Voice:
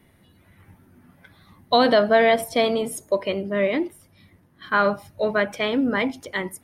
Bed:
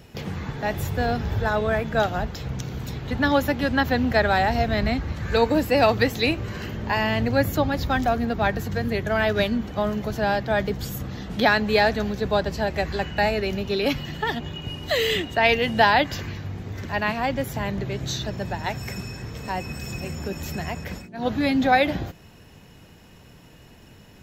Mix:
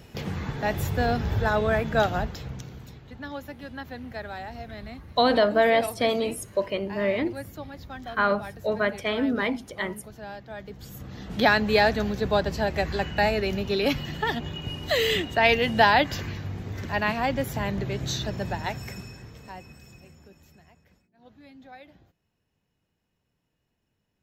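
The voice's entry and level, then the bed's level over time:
3.45 s, -3.5 dB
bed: 2.17 s -0.5 dB
3.12 s -16.5 dB
10.60 s -16.5 dB
11.44 s -1 dB
18.54 s -1 dB
20.84 s -28.5 dB

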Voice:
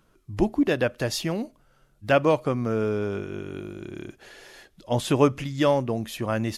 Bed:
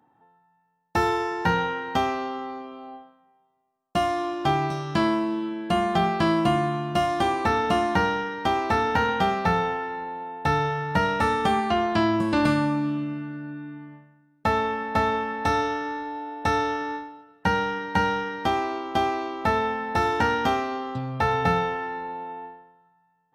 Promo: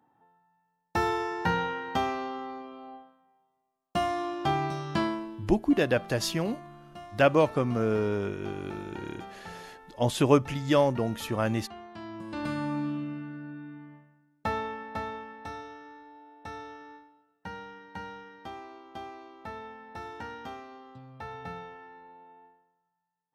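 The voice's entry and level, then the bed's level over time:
5.10 s, -1.5 dB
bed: 4.98 s -4.5 dB
5.58 s -22 dB
11.94 s -22 dB
12.79 s -5.5 dB
14.28 s -5.5 dB
15.63 s -18 dB

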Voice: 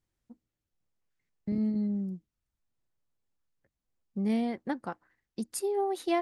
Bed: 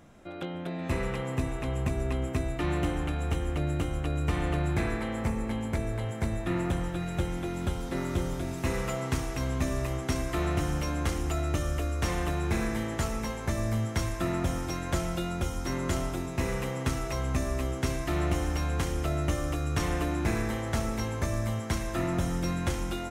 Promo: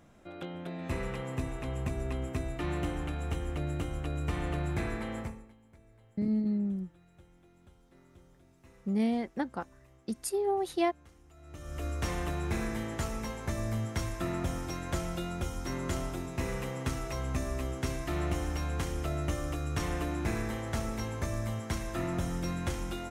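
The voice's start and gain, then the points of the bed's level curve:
4.70 s, 0.0 dB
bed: 5.19 s -4.5 dB
5.56 s -28.5 dB
11.32 s -28.5 dB
11.86 s -4 dB

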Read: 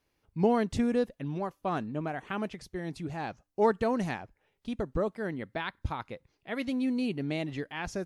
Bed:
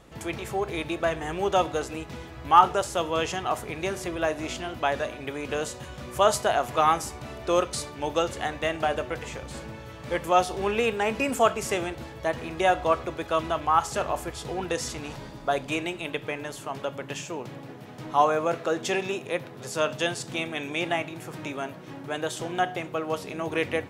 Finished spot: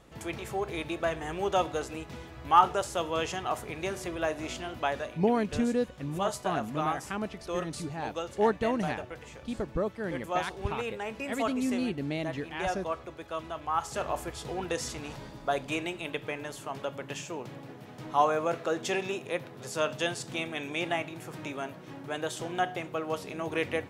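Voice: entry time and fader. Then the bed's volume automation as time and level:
4.80 s, -0.5 dB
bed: 4.85 s -4 dB
5.31 s -10.5 dB
13.53 s -10.5 dB
14.13 s -3.5 dB

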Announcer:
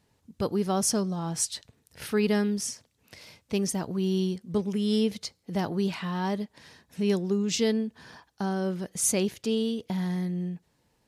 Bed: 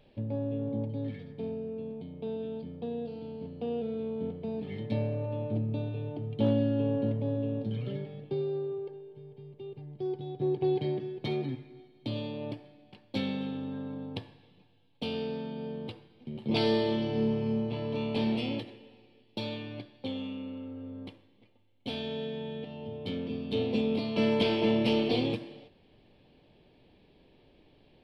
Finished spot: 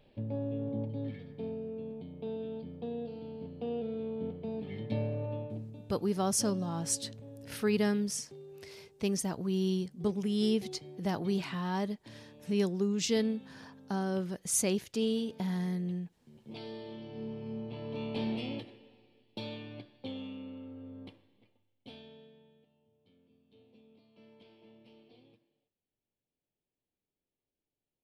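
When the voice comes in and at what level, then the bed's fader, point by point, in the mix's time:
5.50 s, -4.0 dB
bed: 5.34 s -2.5 dB
5.82 s -17.5 dB
16.73 s -17.5 dB
18.04 s -5 dB
21.45 s -5 dB
22.88 s -33 dB

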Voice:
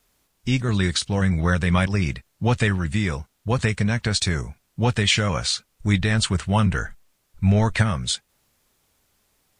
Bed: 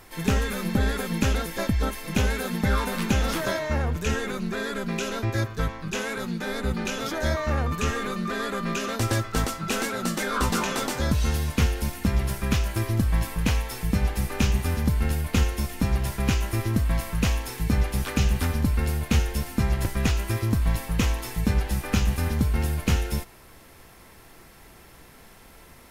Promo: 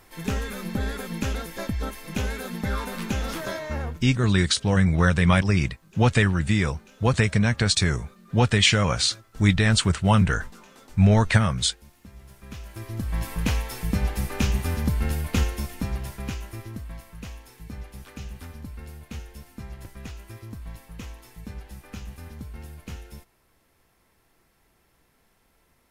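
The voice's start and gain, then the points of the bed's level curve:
3.55 s, +1.0 dB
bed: 3.88 s -4.5 dB
4.12 s -23.5 dB
12.16 s -23.5 dB
13.33 s -1 dB
15.41 s -1 dB
17.06 s -15.5 dB

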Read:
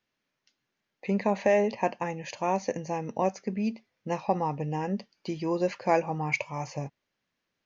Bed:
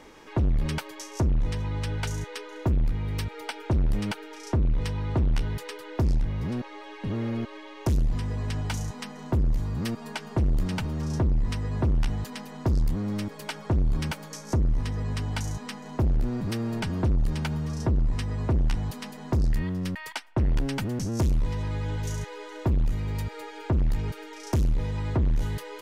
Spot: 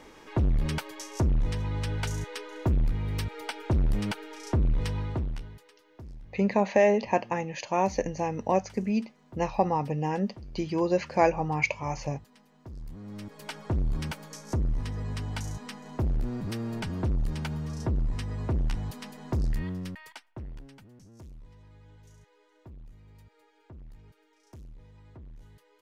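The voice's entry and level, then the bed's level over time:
5.30 s, +2.0 dB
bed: 4.99 s -1 dB
5.73 s -21 dB
12.64 s -21 dB
13.52 s -4 dB
19.71 s -4 dB
20.85 s -24 dB

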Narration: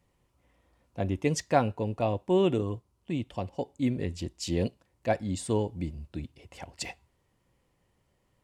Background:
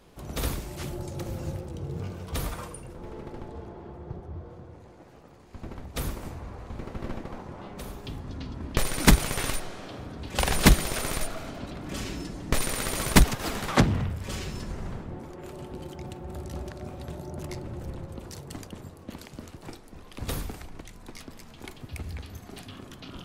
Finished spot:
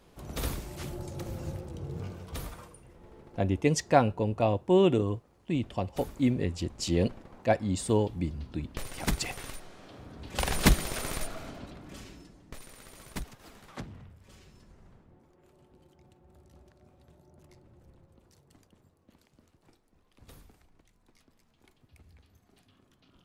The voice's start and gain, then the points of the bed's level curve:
2.40 s, +2.0 dB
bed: 2.07 s -3.5 dB
2.82 s -12.5 dB
9.58 s -12.5 dB
10.41 s -4.5 dB
11.50 s -4.5 dB
12.58 s -21 dB

